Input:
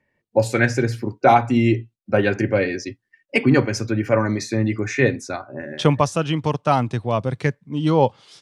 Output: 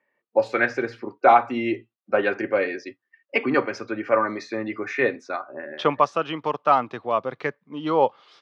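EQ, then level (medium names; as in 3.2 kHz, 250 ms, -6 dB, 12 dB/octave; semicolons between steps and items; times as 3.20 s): high-pass 410 Hz 12 dB/octave; distance through air 240 m; peaking EQ 1.2 kHz +7.5 dB 0.28 oct; 0.0 dB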